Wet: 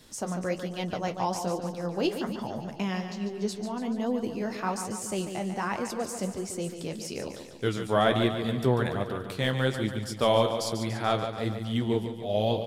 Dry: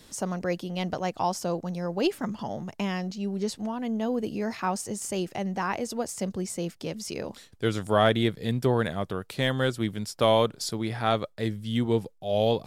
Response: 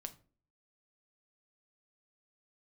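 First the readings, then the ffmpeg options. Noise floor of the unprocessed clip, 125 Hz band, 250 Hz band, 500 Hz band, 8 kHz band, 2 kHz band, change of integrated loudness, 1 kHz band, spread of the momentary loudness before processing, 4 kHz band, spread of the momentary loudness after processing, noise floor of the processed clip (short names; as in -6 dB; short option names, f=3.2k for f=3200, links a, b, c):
-56 dBFS, -1.0 dB, -1.0 dB, -1.0 dB, -1.5 dB, -1.0 dB, -1.0 dB, -1.0 dB, 10 LU, -1.0 dB, 9 LU, -41 dBFS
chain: -af "aecho=1:1:144|288|432|576|720|864|1008:0.376|0.214|0.122|0.0696|0.0397|0.0226|0.0129,flanger=delay=7.6:depth=8.8:regen=-48:speed=1.2:shape=sinusoidal,volume=2dB"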